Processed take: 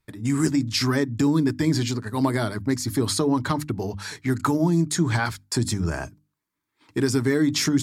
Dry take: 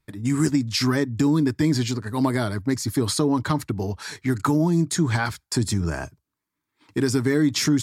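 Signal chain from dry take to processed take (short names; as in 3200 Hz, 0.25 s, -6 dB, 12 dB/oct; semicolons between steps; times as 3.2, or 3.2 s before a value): notches 50/100/150/200/250/300 Hz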